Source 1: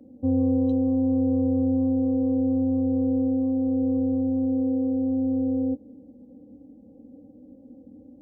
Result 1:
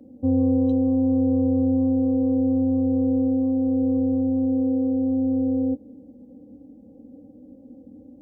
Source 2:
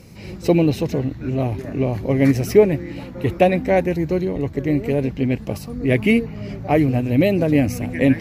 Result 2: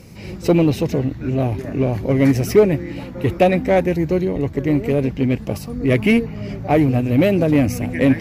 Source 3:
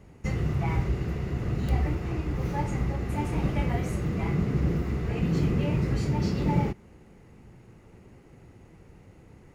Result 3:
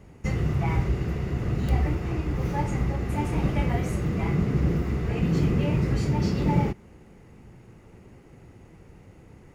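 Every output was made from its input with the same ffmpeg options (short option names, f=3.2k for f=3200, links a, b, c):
-filter_complex "[0:a]bandreject=f=4.1k:w=28,asplit=2[a][b];[b]aeval=exprs='0.211*(abs(mod(val(0)/0.211+3,4)-2)-1)':c=same,volume=-11dB[c];[a][c]amix=inputs=2:normalize=0"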